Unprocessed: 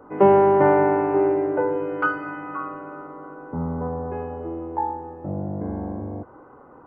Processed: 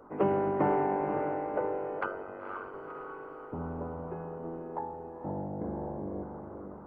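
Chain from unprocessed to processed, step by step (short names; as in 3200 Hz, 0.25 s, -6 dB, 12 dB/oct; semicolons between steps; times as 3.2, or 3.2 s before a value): harmonic-percussive split harmonic -15 dB; diffused feedback echo 0.505 s, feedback 46%, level -6 dB; 1.99–2.74 ring modulator 48 Hz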